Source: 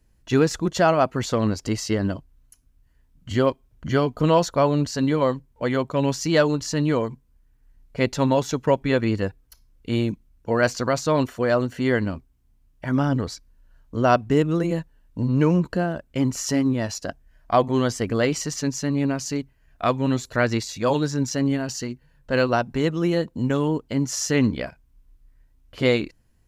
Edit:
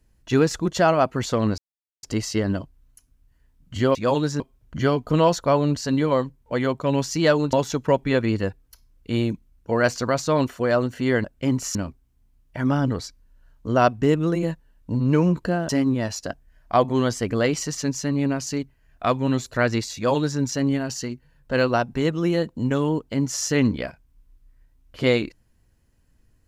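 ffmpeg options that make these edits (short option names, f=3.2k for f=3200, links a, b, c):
-filter_complex "[0:a]asplit=8[a][b][c][d][e][f][g][h];[a]atrim=end=1.58,asetpts=PTS-STARTPTS,afade=t=out:st=1.576:d=0.004:c=hsin,apad=pad_dur=0.45[i];[b]atrim=start=1.58:end=3.502,asetpts=PTS-STARTPTS,afade=t=in:d=0.004:c=hsin[j];[c]atrim=start=20.738:end=21.192[k];[d]atrim=start=3.498:end=6.632[l];[e]atrim=start=8.318:end=12.032[m];[f]atrim=start=15.968:end=16.482[n];[g]atrim=start=12.028:end=15.972[o];[h]atrim=start=16.478[p];[i][j]concat=n=2:v=0:a=1[q];[q][k]acrossfade=d=0.004:c1=hsin:c2=hsin[r];[r][l]acrossfade=d=0.004:c1=hsin:c2=hsin[s];[s][m]acrossfade=d=0.004:c1=hsin:c2=hsin[t];[t][n]acrossfade=d=0.004:c1=hsin:c2=hsin[u];[u][o]acrossfade=d=0.004:c1=hsin:c2=hsin[v];[v][p]acrossfade=d=0.004:c1=hsin:c2=hsin"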